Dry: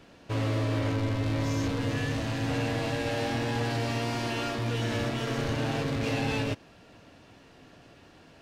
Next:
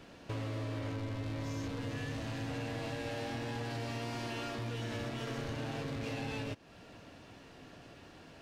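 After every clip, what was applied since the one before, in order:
downward compressor 3 to 1, threshold −39 dBFS, peak gain reduction 11 dB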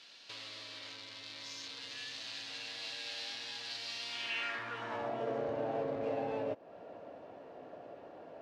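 band-pass filter sweep 4,200 Hz → 590 Hz, 0:04.02–0:05.24
level +11 dB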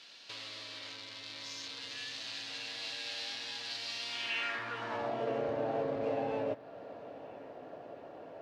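feedback echo with a low-pass in the loop 983 ms, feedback 51%, low-pass 4,700 Hz, level −20.5 dB
level +2 dB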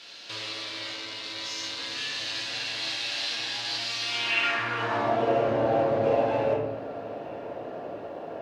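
convolution reverb RT60 1.0 s, pre-delay 6 ms, DRR −1.5 dB
level +6.5 dB

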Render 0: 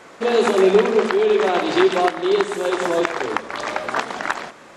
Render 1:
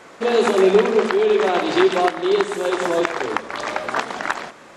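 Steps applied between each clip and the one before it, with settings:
no processing that can be heard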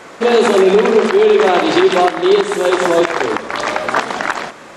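boost into a limiter +8.5 dB
level −1 dB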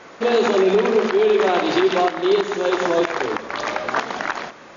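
linear-phase brick-wall low-pass 7,000 Hz
level −6 dB

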